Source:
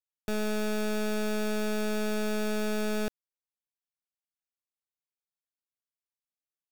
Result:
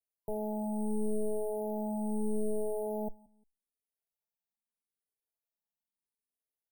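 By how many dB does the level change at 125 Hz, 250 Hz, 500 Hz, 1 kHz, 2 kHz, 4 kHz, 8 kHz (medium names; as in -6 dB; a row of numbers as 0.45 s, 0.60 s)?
no reading, -3.5 dB, -2.5 dB, -3.5 dB, under -40 dB, under -40 dB, -9.0 dB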